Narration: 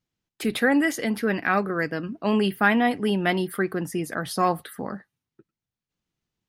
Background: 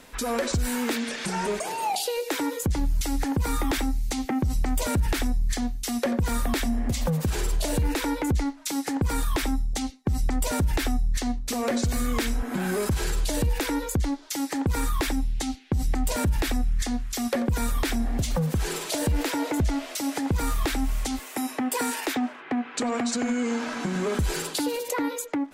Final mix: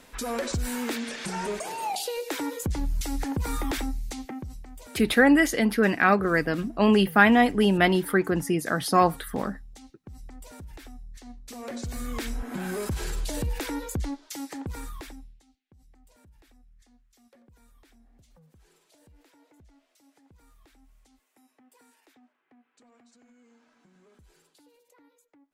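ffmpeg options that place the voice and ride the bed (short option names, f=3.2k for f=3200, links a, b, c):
-filter_complex "[0:a]adelay=4550,volume=2.5dB[a];[1:a]volume=11dB,afade=t=out:st=3.78:d=0.85:silence=0.158489,afade=t=in:st=11.2:d=1.27:silence=0.188365,afade=t=out:st=14.05:d=1.36:silence=0.0375837[b];[a][b]amix=inputs=2:normalize=0"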